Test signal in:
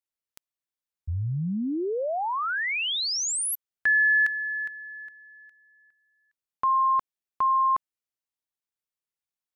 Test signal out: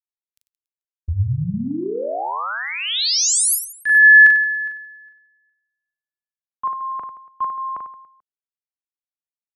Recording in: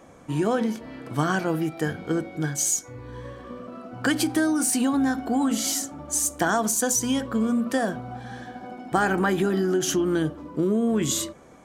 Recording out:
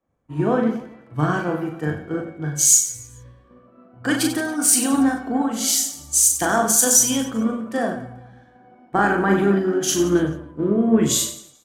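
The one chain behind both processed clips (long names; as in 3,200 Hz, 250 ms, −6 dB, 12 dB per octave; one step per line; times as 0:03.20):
reverse bouncing-ball delay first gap 40 ms, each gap 1.4×, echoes 5
multiband upward and downward expander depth 100%
level +1 dB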